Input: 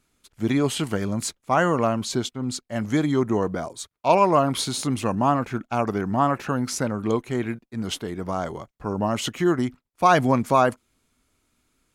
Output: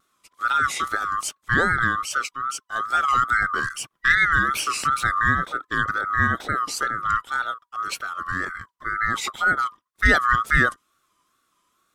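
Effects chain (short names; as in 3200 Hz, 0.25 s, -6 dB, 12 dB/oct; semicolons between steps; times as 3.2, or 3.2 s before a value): band-swap scrambler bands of 1000 Hz; wow and flutter 110 cents; 3.08–5.19 three-band squash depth 70%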